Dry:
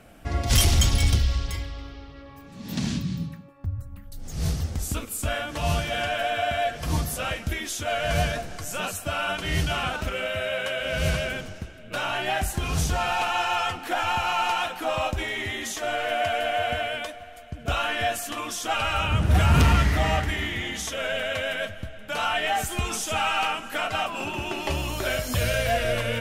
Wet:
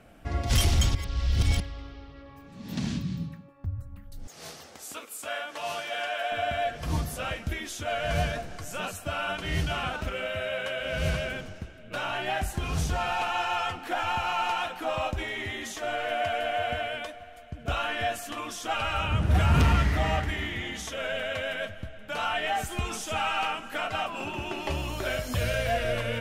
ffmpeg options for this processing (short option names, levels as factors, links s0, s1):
-filter_complex "[0:a]asettb=1/sr,asplit=3[s0][s1][s2];[s0]atrim=end=4.274[s3];[s1]atrim=start=4.27:end=6.32,asetpts=PTS-STARTPTS,afade=t=in:d=0.004:c=qsin,afade=t=out:st=2.046:d=0.004:c=qsin,highpass=520[s4];[s2]atrim=start=6.316[s5];[s3][s4]acrossfade=d=0.004:c1=hsin:c2=qsin[s6];[s6][s5]acrossfade=d=0.004:c1=qsin:c2=hsin,asplit=3[s7][s8][s9];[s7]atrim=end=0.952[s10];[s8]atrim=start=0.948:end=1.602,asetpts=PTS-STARTPTS,areverse[s11];[s9]atrim=start=1.598[s12];[s10][s11]acrossfade=d=0.004:c1=hsin:c2=hsin[s13];[s13][s12]acrossfade=d=0.004:c1=hsin:c2=hsin,highshelf=f=4900:g=-6,volume=0.708"